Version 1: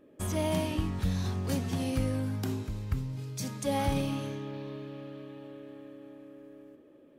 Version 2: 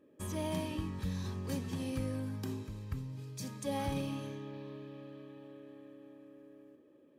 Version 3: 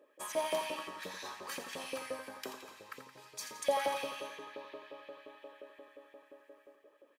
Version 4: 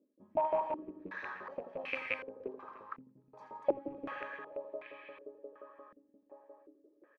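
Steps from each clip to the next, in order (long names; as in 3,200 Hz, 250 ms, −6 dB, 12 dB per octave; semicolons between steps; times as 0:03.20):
notch comb filter 710 Hz; level −5.5 dB
auto-filter high-pass saw up 5.7 Hz 490–2,300 Hz; on a send: repeating echo 85 ms, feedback 57%, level −10 dB; on the sum: level +3 dB
loose part that buzzes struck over −51 dBFS, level −24 dBFS; slap from a distant wall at 51 metres, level −14 dB; low-pass on a step sequencer 2.7 Hz 230–2,300 Hz; level −3.5 dB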